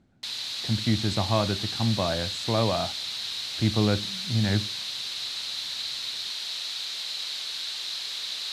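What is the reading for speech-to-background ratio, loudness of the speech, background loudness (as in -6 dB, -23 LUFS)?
3.0 dB, -27.5 LUFS, -30.5 LUFS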